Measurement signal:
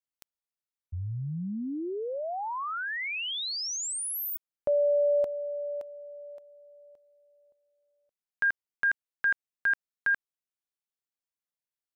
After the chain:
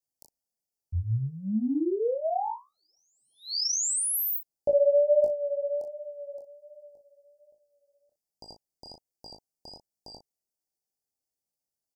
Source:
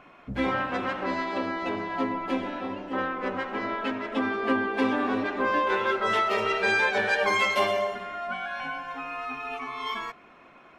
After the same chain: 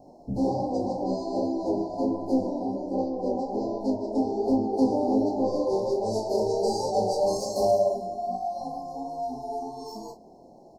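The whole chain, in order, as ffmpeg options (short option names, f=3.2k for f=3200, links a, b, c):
-filter_complex "[0:a]asoftclip=type=tanh:threshold=-19.5dB,flanger=delay=18.5:depth=7.3:speed=1.3,asuperstop=centerf=2000:order=20:qfactor=0.56,asplit=2[a][b];[b]adelay=37,volume=-8.5dB[c];[a][c]amix=inputs=2:normalize=0,volume=8dB"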